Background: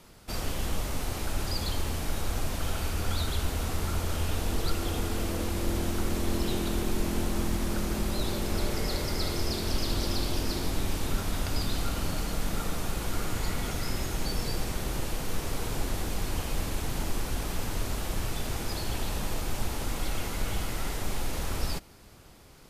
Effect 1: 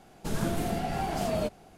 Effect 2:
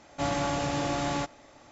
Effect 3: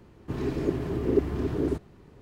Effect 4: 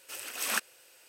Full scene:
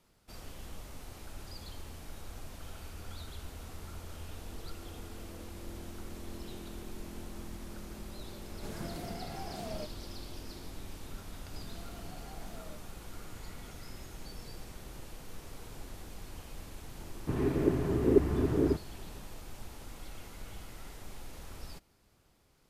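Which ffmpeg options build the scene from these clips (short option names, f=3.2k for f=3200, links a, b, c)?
-filter_complex "[1:a]asplit=2[a][b];[0:a]volume=-15dB[c];[a]highpass=56[d];[b]acompressor=threshold=-36dB:ratio=6:attack=3.2:release=140:knee=1:detection=peak[e];[3:a]lowpass=2.7k[f];[d]atrim=end=1.77,asetpts=PTS-STARTPTS,volume=-12dB,afade=t=in:d=0.004:c=hsin,afade=t=out:st=1.766:d=0.004:c=hsin,adelay=8380[g];[e]atrim=end=1.77,asetpts=PTS-STARTPTS,volume=-11.5dB,afade=t=in:d=0.004:c=hsin,afade=t=out:st=1.766:d=0.004:c=hsin,adelay=11290[h];[f]atrim=end=2.21,asetpts=PTS-STARTPTS,volume=-0.5dB,afade=t=in:d=0.004:c=hsin,afade=t=out:st=2.206:d=0.004:c=hsin,adelay=16990[i];[c][g][h][i]amix=inputs=4:normalize=0"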